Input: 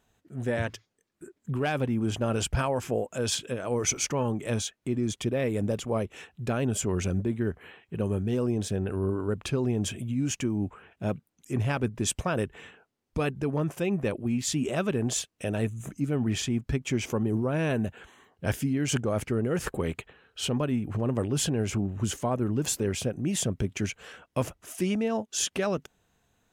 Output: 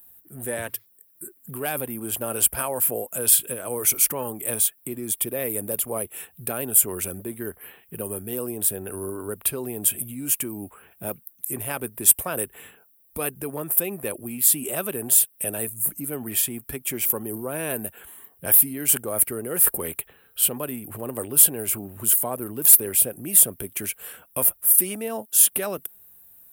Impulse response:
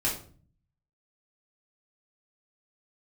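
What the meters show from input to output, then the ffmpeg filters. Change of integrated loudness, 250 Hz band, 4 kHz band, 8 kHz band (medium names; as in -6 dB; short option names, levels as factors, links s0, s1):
+8.5 dB, -5.5 dB, 0.0 dB, +13.5 dB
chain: -filter_complex "[0:a]highshelf=f=11000:g=9,acrossover=split=300|3600[s0][s1][s2];[s0]acompressor=threshold=0.00891:ratio=4[s3];[s3][s1][s2]amix=inputs=3:normalize=0,aexciter=amount=10.6:drive=9.9:freq=9400,asoftclip=type=tanh:threshold=0.75"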